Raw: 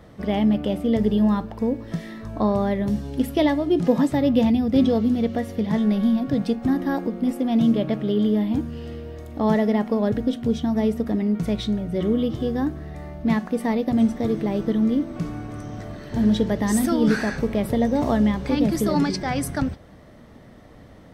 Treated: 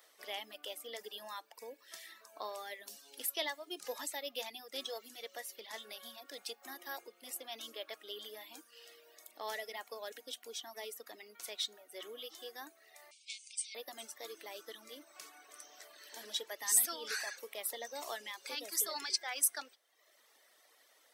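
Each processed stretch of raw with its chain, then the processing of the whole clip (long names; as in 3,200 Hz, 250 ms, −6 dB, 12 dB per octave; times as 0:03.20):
0:13.11–0:13.75: spectral tilt +3.5 dB per octave + downward compressor 2 to 1, threshold −31 dBFS + linear-phase brick-wall band-pass 2,100–9,300 Hz
whole clip: high-pass filter 370 Hz 24 dB per octave; reverb reduction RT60 0.89 s; first difference; level +2.5 dB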